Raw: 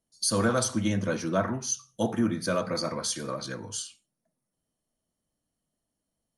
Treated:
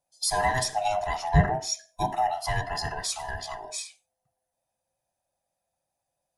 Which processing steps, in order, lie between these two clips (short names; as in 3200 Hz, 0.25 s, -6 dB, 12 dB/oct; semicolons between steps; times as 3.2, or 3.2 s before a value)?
band-swap scrambler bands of 500 Hz; 1.34–1.86 low shelf 460 Hz +10 dB